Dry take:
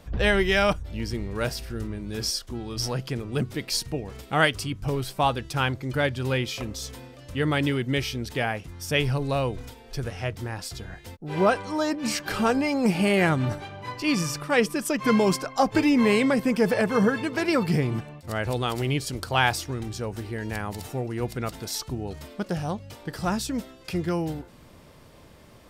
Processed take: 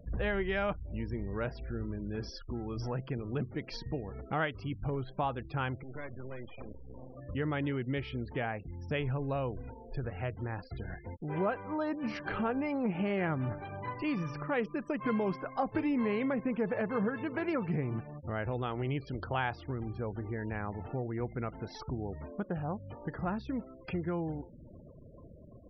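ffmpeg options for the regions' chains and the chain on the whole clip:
-filter_complex "[0:a]asettb=1/sr,asplit=3[s0][s1][s2];[s0]atrim=end=5.834[s3];[s1]atrim=start=5.83:end=7.15,asetpts=PTS-STARTPTS,afade=t=in:d=0.004:c=qsin,afade=t=out:st=1.316:d=0.004:c=qsin,equalizer=f=930:t=o:w=0.31:g=-3,acompressor=threshold=0.0126:ratio=2.5:attack=3.2:release=140:knee=1:detection=peak,acrusher=bits=5:dc=4:mix=0:aa=0.000001[s4];[s2]atrim=start=7.146[s5];[s3][s4]acrossfade=d=0.004:c1=hsin:c2=qsin[s6];[s6][s5]acrossfade=d=0.004:c1=qsin:c2=hsin,lowpass=2100,afftfilt=real='re*gte(hypot(re,im),0.00708)':imag='im*gte(hypot(re,im),0.00708)':win_size=1024:overlap=0.75,acompressor=threshold=0.0141:ratio=2"

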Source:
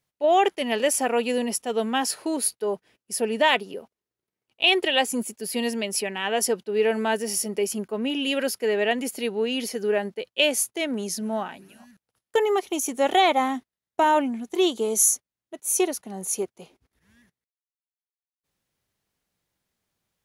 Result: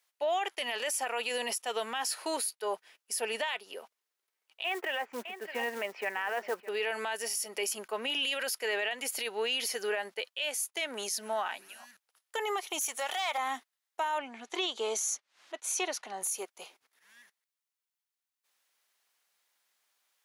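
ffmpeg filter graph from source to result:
-filter_complex "[0:a]asettb=1/sr,asplit=3[s0][s1][s2];[s0]atrim=end=4.644[s3];[s1]atrim=start=4.64:end=6.69,asetpts=PTS-STARTPTS,afade=t=in:d=0.004:c=qsin,afade=t=out:st=2.046:d=0.004:c=qsin,lowpass=f=2000:w=0.5412,lowpass=f=2000:w=1.3066,aecho=1:1:611:0.112,atrim=end_sample=90405,acrusher=bits=7:mode=log:mix=0:aa=0.000001[s4];[s2]atrim=start=6.686[s5];[s3][s4]acrossfade=d=0.004:c1=hsin:c2=qsin[s6];[s6][s5]acrossfade=d=0.004:c1=qsin:c2=hsin,asettb=1/sr,asplit=3[s7][s8][s9];[s7]atrim=end=12.814[s10];[s8]atrim=start=12.81:end=13.38,asetpts=PTS-STARTPTS,afade=t=in:d=0.004:c=qsin,afade=t=out:st=0.566:d=0.004:c=qsin,equalizer=f=310:w=1.1:g=-12,acompressor=threshold=0.0447:ratio=12:attack=3.2:release=140:knee=1:detection=peak,asoftclip=type=hard:threshold=0.0447[s11];[s9]atrim=start=13.376[s12];[s10][s11]acrossfade=d=0.004:c1=hsin:c2=qsin[s13];[s13][s12]acrossfade=d=0.004:c1=qsin:c2=hsin,asettb=1/sr,asplit=3[s14][s15][s16];[s14]atrim=end=14.184[s17];[s15]atrim=start=14.18:end=16.22,asetpts=PTS-STARTPTS,afade=t=in:d=0.004:c=qsin,afade=t=out:st=2.036:d=0.004:c=qsin,highpass=110,lowpass=4900,acompressor=mode=upward:threshold=0.0141:ratio=2.5:attack=3.2:release=140:knee=2.83:detection=peak[s18];[s16]atrim=start=16.216[s19];[s17][s18]acrossfade=d=0.004:c1=hsin:c2=qsin[s20];[s20][s19]acrossfade=d=0.004:c1=qsin:c2=hsin,highpass=890,acompressor=threshold=0.0251:ratio=4,alimiter=level_in=1.78:limit=0.0631:level=0:latency=1:release=13,volume=0.562,volume=1.88"

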